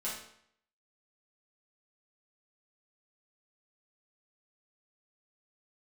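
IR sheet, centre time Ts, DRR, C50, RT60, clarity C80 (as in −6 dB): 44 ms, −8.0 dB, 3.0 dB, 0.65 s, 7.0 dB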